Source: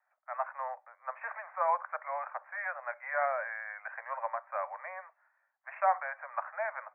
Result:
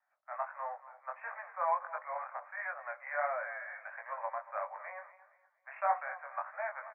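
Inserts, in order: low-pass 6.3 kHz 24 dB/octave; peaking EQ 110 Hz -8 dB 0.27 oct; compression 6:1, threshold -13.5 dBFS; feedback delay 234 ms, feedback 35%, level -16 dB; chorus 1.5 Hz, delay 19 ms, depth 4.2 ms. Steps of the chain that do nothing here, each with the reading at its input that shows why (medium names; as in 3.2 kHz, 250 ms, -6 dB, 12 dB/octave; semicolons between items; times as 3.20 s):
low-pass 6.3 kHz: input has nothing above 2.4 kHz; peaking EQ 110 Hz: input has nothing below 480 Hz; compression, threshold -13.5 dBFS: peak at its input -15.0 dBFS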